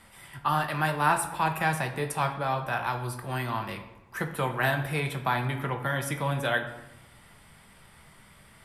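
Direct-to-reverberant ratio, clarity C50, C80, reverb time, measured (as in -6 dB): 4.5 dB, 9.0 dB, 12.0 dB, 1.0 s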